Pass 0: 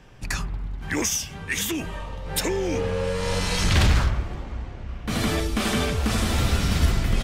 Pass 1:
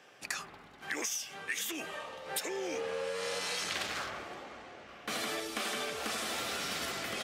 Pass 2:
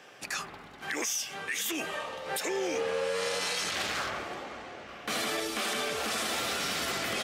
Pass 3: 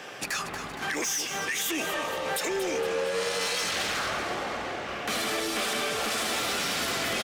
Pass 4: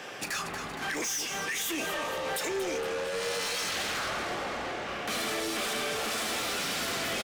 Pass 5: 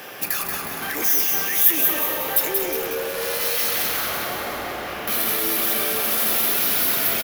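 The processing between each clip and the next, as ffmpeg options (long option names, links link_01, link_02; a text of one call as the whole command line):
ffmpeg -i in.wav -af "highpass=470,bandreject=frequency=950:width=9.5,acompressor=threshold=-31dB:ratio=6,volume=-2dB" out.wav
ffmpeg -i in.wav -af "alimiter=level_in=4.5dB:limit=-24dB:level=0:latency=1:release=24,volume=-4.5dB,volume=6dB" out.wav
ffmpeg -i in.wav -af "acompressor=threshold=-41dB:ratio=2,aeval=exprs='0.0596*sin(PI/2*2.24*val(0)/0.0596)':channel_layout=same,aecho=1:1:233|466|699|932|1165|1398:0.316|0.161|0.0823|0.0419|0.0214|0.0109" out.wav
ffmpeg -i in.wav -filter_complex "[0:a]asoftclip=type=tanh:threshold=-28dB,asplit=2[link_01][link_02];[link_02]adelay=36,volume=-13dB[link_03];[link_01][link_03]amix=inputs=2:normalize=0" out.wav
ffmpeg -i in.wav -filter_complex "[0:a]aexciter=amount=12.7:drive=4.1:freq=11000,asplit=2[link_01][link_02];[link_02]aecho=0:1:182|364|546|728|910|1092|1274:0.596|0.304|0.155|0.079|0.0403|0.0206|0.0105[link_03];[link_01][link_03]amix=inputs=2:normalize=0,volume=3.5dB" out.wav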